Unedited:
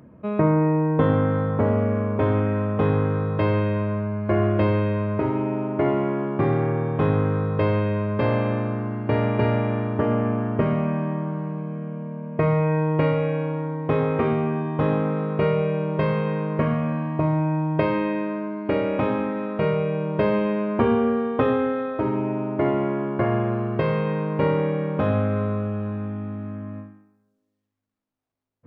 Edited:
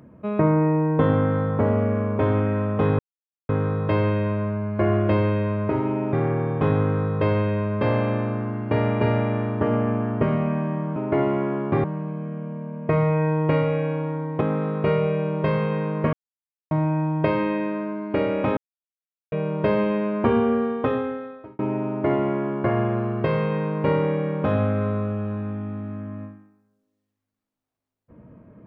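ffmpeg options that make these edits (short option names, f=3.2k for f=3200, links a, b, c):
-filter_complex "[0:a]asplit=11[a][b][c][d][e][f][g][h][i][j][k];[a]atrim=end=2.99,asetpts=PTS-STARTPTS,afade=t=out:st=2.986:d=0.004:c=hsin,apad=pad_dur=0.5[l];[b]atrim=start=2.99:end=5.632,asetpts=PTS-STARTPTS,afade=t=in:d=0.004:c=hsin[m];[c]atrim=start=6.508:end=11.342[n];[d]atrim=start=5.628:end=6.512[o];[e]atrim=start=11.338:end=13.912[p];[f]atrim=start=14.958:end=16.68,asetpts=PTS-STARTPTS,afade=t=out:st=1.718:d=0.004:c=hsin[q];[g]atrim=start=16.68:end=17.26,asetpts=PTS-STARTPTS,volume=0[r];[h]atrim=start=17.26:end=19.12,asetpts=PTS-STARTPTS,afade=t=in:d=0.004:c=hsin,afade=t=out:st=1.856:d=0.004:c=hsin[s];[i]atrim=start=19.12:end=19.87,asetpts=PTS-STARTPTS,volume=0[t];[j]atrim=start=19.87:end=22.14,asetpts=PTS-STARTPTS,afade=t=in:d=0.004:c=hsin,afade=t=out:st=1.32:d=0.95[u];[k]atrim=start=22.14,asetpts=PTS-STARTPTS,afade=t=in:d=0.004:c=hsin[v];[l][m]concat=n=2:v=0:a=1[w];[w][n]acrossfade=d=0.004:c1=hsin:c2=hsin[x];[x][o]acrossfade=d=0.004:c1=hsin:c2=hsin[y];[y][p]acrossfade=d=0.004:c1=hsin:c2=hsin[z];[q][r][s][t][u][v]concat=n=6:v=0:a=1[aa];[z][aa]acrossfade=d=0.004:c1=hsin:c2=hsin"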